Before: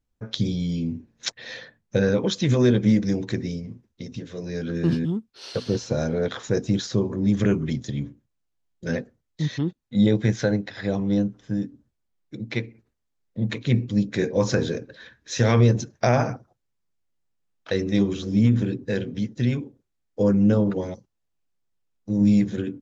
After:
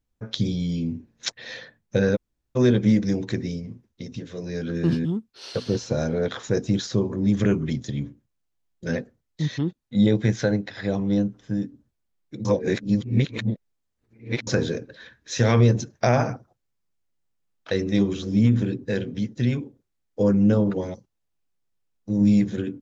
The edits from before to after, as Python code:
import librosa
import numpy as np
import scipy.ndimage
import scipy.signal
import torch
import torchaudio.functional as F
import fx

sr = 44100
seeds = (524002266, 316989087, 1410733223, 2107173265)

y = fx.edit(x, sr, fx.room_tone_fill(start_s=2.16, length_s=0.4, crossfade_s=0.02),
    fx.reverse_span(start_s=12.45, length_s=2.02), tone=tone)